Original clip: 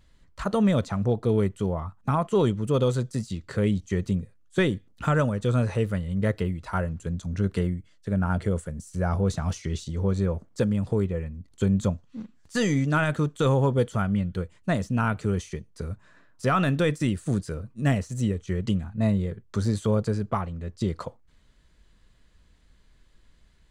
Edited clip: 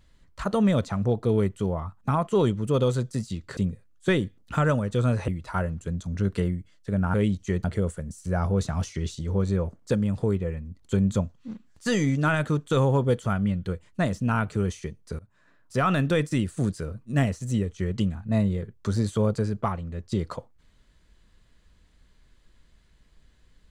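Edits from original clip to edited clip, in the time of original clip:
3.57–4.07 s: move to 8.33 s
5.78–6.47 s: delete
15.88–16.71 s: fade in equal-power, from -23.5 dB

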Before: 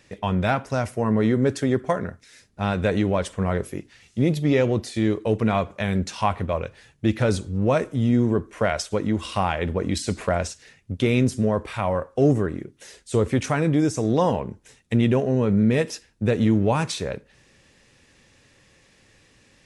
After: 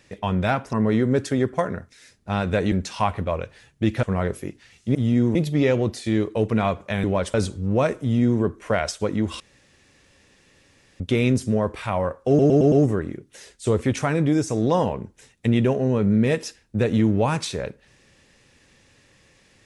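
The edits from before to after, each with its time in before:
0.73–1.04 s: delete
3.03–3.33 s: swap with 5.94–7.25 s
7.92–8.32 s: copy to 4.25 s
9.31–10.91 s: room tone
12.19 s: stutter 0.11 s, 5 plays

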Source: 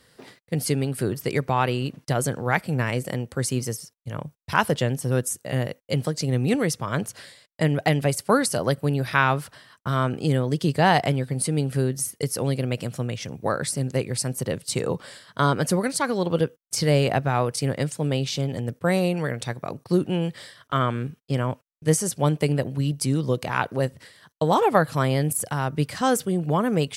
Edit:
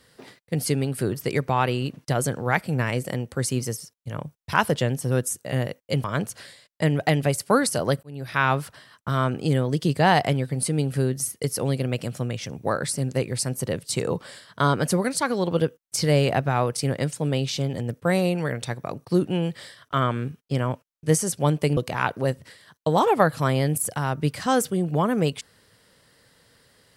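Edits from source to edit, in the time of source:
6.04–6.83 s: delete
8.82–9.30 s: fade in
22.56–23.32 s: delete

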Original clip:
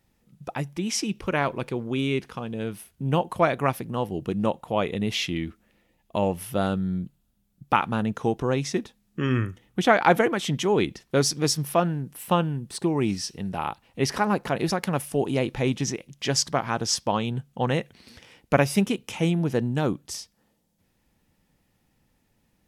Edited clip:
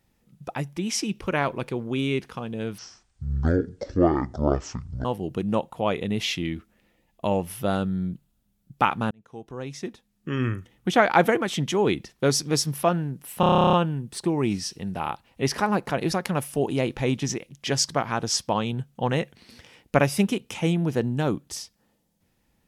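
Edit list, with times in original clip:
2.78–3.96 s: speed 52%
8.02–9.65 s: fade in
12.31 s: stutter 0.03 s, 12 plays

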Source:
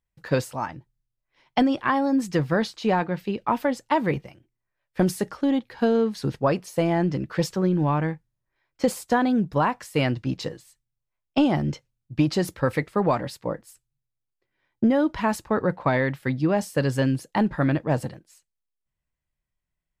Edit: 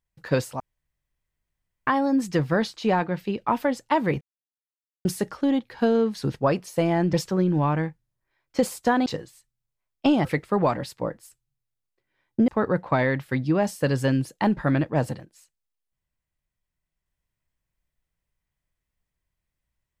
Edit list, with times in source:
0.60–1.87 s: room tone
4.21–5.05 s: mute
7.13–7.38 s: delete
9.31–10.38 s: delete
11.57–12.69 s: delete
14.92–15.42 s: delete

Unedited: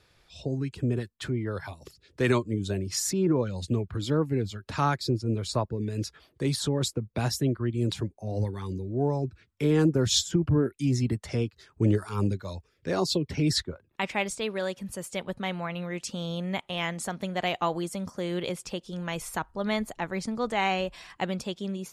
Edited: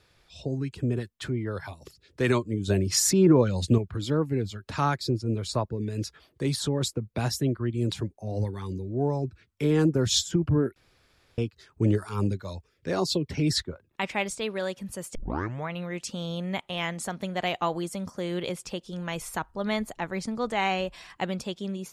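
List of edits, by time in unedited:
2.68–3.78 s: gain +6 dB
10.76–11.38 s: room tone
15.15 s: tape start 0.53 s

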